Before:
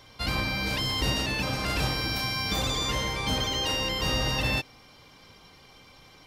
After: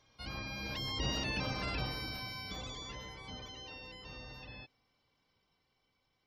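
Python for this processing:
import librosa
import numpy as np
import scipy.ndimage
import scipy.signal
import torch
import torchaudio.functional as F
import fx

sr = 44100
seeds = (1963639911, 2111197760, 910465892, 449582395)

y = fx.doppler_pass(x, sr, speed_mps=9, closest_m=4.6, pass_at_s=1.35)
y = fx.spec_gate(y, sr, threshold_db=-25, keep='strong')
y = y * librosa.db_to_amplitude(-7.0)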